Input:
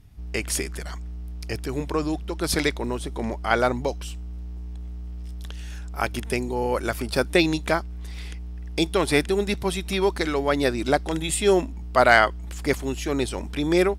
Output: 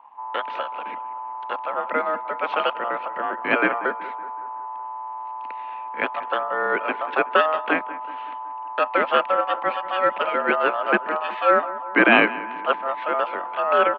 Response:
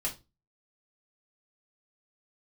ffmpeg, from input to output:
-filter_complex "[0:a]asplit=2[a][b];[b]adelay=187,lowpass=f=1.6k:p=1,volume=-16dB,asplit=2[c][d];[d]adelay=187,lowpass=f=1.6k:p=1,volume=0.54,asplit=2[e][f];[f]adelay=187,lowpass=f=1.6k:p=1,volume=0.54,asplit=2[g][h];[h]adelay=187,lowpass=f=1.6k:p=1,volume=0.54,asplit=2[i][j];[j]adelay=187,lowpass=f=1.6k:p=1,volume=0.54[k];[a][c][e][g][i][k]amix=inputs=6:normalize=0,aeval=exprs='val(0)*sin(2*PI*890*n/s)':c=same,highpass=f=170:t=q:w=0.5412,highpass=f=170:t=q:w=1.307,lowpass=f=2.8k:t=q:w=0.5176,lowpass=f=2.8k:t=q:w=0.7071,lowpass=f=2.8k:t=q:w=1.932,afreqshift=51,volume=4.5dB"

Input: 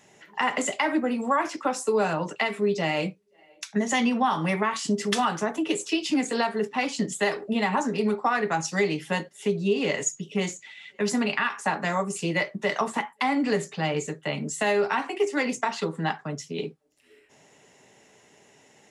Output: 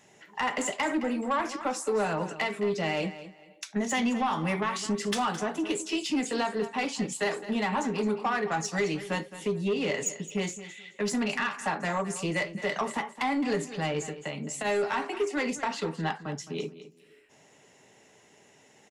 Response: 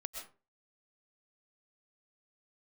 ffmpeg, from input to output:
-filter_complex "[0:a]asplit=3[a][b][c];[a]afade=t=out:st=14.08:d=0.02[d];[b]acompressor=threshold=-29dB:ratio=6,afade=t=in:st=14.08:d=0.02,afade=t=out:st=14.64:d=0.02[e];[c]afade=t=in:st=14.64:d=0.02[f];[d][e][f]amix=inputs=3:normalize=0,asoftclip=type=tanh:threshold=-18.5dB,asplit=2[g][h];[h]aecho=0:1:215|430:0.2|0.0439[i];[g][i]amix=inputs=2:normalize=0,volume=-2dB"

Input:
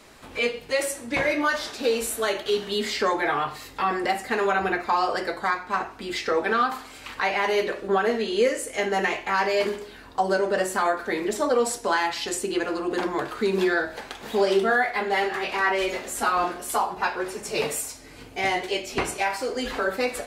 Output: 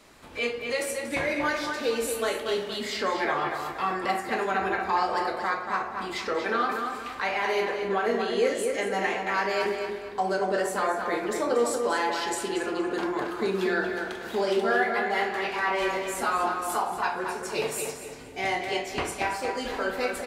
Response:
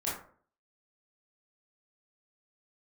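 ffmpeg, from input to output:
-filter_complex "[0:a]asplit=2[a][b];[b]adelay=234,lowpass=f=4k:p=1,volume=-5dB,asplit=2[c][d];[d]adelay=234,lowpass=f=4k:p=1,volume=0.41,asplit=2[e][f];[f]adelay=234,lowpass=f=4k:p=1,volume=0.41,asplit=2[g][h];[h]adelay=234,lowpass=f=4k:p=1,volume=0.41,asplit=2[i][j];[j]adelay=234,lowpass=f=4k:p=1,volume=0.41[k];[a][c][e][g][i][k]amix=inputs=6:normalize=0,asplit=2[l][m];[1:a]atrim=start_sample=2205[n];[m][n]afir=irnorm=-1:irlink=0,volume=-8.5dB[o];[l][o]amix=inputs=2:normalize=0,volume=-6.5dB"

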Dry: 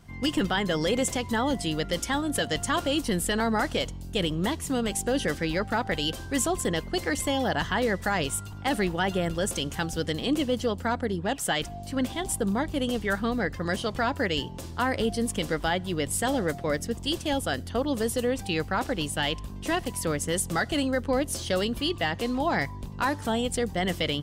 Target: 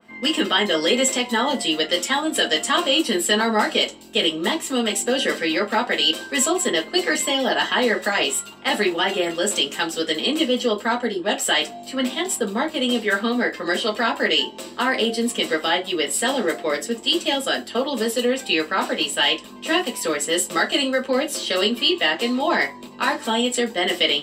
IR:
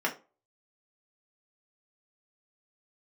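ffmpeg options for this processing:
-filter_complex "[1:a]atrim=start_sample=2205,asetrate=61740,aresample=44100[a];[0:a][a]afir=irnorm=-1:irlink=0,adynamicequalizer=threshold=0.0126:dfrequency=2600:dqfactor=0.7:tfrequency=2600:tqfactor=0.7:attack=5:release=100:ratio=0.375:range=4:mode=boostabove:tftype=highshelf"

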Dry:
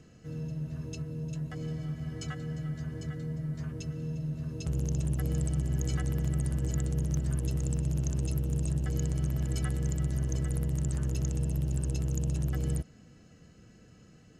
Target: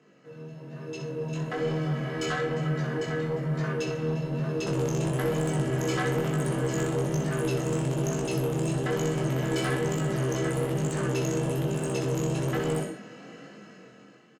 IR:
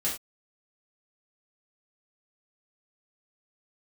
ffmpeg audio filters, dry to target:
-filter_complex "[0:a]highpass=f=140:w=0.5412,highpass=f=140:w=1.3066,equalizer=f=950:w=5.1:g=3,aecho=1:1:15|64:0.531|0.398,asplit=2[a][b];[1:a]atrim=start_sample=2205,adelay=43[c];[b][c]afir=irnorm=-1:irlink=0,volume=-14.5dB[d];[a][d]amix=inputs=2:normalize=0,dynaudnorm=f=340:g=7:m=15.5dB,bass=f=250:g=-13,treble=f=4k:g=-13,asoftclip=type=tanh:threshold=-24dB,flanger=delay=19.5:depth=5.4:speed=1.1,volume=4.5dB"

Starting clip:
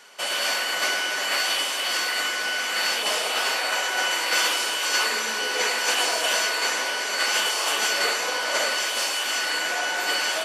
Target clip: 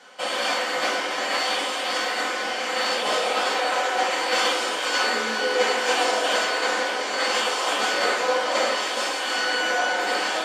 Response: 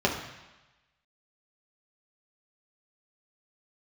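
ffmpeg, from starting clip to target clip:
-filter_complex "[1:a]atrim=start_sample=2205,afade=t=out:st=0.14:d=0.01,atrim=end_sample=6615,asetrate=57330,aresample=44100[a];[0:a][a]afir=irnorm=-1:irlink=0,volume=-8.5dB"

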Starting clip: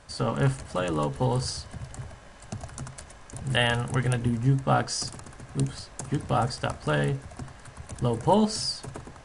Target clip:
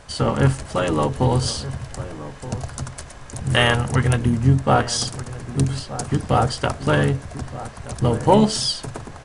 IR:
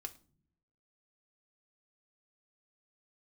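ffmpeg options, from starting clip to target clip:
-filter_complex "[0:a]acontrast=71,asplit=2[a][b];[b]adelay=1224,volume=-14dB,highshelf=f=4k:g=-27.6[c];[a][c]amix=inputs=2:normalize=0,asplit=3[d][e][f];[e]asetrate=29433,aresample=44100,atempo=1.49831,volume=-9dB[g];[f]asetrate=37084,aresample=44100,atempo=1.18921,volume=-15dB[h];[d][g][h]amix=inputs=3:normalize=0"

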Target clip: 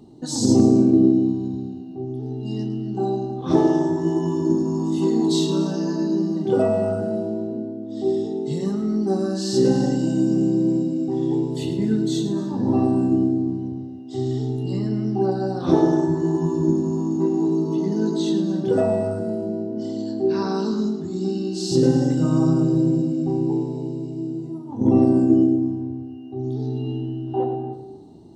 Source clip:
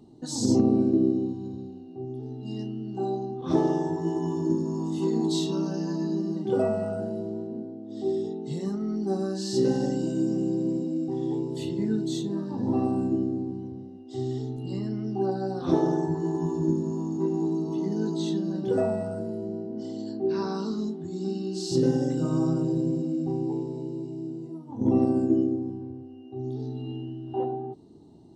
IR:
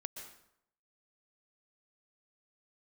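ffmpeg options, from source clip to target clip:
-filter_complex "[0:a]asplit=2[a][b];[1:a]atrim=start_sample=2205,adelay=108[c];[b][c]afir=irnorm=-1:irlink=0,volume=-7dB[d];[a][d]amix=inputs=2:normalize=0,volume=5.5dB"

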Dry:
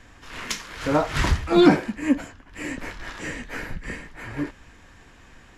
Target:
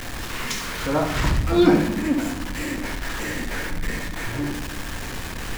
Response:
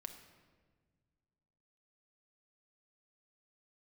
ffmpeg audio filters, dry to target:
-filter_complex "[0:a]aeval=exprs='val(0)+0.5*0.0668*sgn(val(0))':c=same,asplit=2[a][b];[1:a]atrim=start_sample=2205,lowshelf=f=470:g=10.5,adelay=69[c];[b][c]afir=irnorm=-1:irlink=0,volume=-5dB[d];[a][d]amix=inputs=2:normalize=0,volume=-4dB"

